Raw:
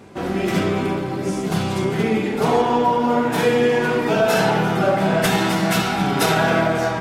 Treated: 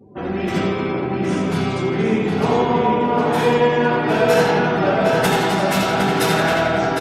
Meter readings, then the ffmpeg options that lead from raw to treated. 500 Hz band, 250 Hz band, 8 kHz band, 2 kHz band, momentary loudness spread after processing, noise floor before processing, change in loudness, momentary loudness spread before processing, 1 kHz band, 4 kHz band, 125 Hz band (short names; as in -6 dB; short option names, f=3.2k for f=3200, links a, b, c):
+1.5 dB, +0.5 dB, -1.5 dB, +1.0 dB, 5 LU, -25 dBFS, +1.0 dB, 6 LU, +1.0 dB, +0.5 dB, +0.5 dB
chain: -filter_complex "[0:a]asplit=2[a][b];[b]aecho=0:1:85|170|255|340|425|510:0.501|0.251|0.125|0.0626|0.0313|0.0157[c];[a][c]amix=inputs=2:normalize=0,afftdn=nr=33:nf=-40,asplit=2[d][e];[e]adelay=761,lowpass=f=4.6k:p=1,volume=-3dB,asplit=2[f][g];[g]adelay=761,lowpass=f=4.6k:p=1,volume=0.31,asplit=2[h][i];[i]adelay=761,lowpass=f=4.6k:p=1,volume=0.31,asplit=2[j][k];[k]adelay=761,lowpass=f=4.6k:p=1,volume=0.31[l];[f][h][j][l]amix=inputs=4:normalize=0[m];[d][m]amix=inputs=2:normalize=0,volume=-1.5dB"